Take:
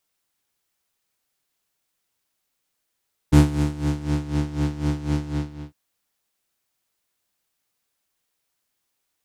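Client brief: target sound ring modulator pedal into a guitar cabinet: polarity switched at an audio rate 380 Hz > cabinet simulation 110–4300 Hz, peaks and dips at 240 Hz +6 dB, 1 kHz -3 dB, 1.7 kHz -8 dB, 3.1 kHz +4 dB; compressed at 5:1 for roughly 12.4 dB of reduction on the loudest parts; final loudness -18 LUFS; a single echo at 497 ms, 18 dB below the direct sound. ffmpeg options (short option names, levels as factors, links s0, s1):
-af "acompressor=threshold=0.0708:ratio=5,aecho=1:1:497:0.126,aeval=exprs='val(0)*sgn(sin(2*PI*380*n/s))':c=same,highpass=110,equalizer=f=240:t=q:w=4:g=6,equalizer=f=1000:t=q:w=4:g=-3,equalizer=f=1700:t=q:w=4:g=-8,equalizer=f=3100:t=q:w=4:g=4,lowpass=f=4300:w=0.5412,lowpass=f=4300:w=1.3066,volume=3.16"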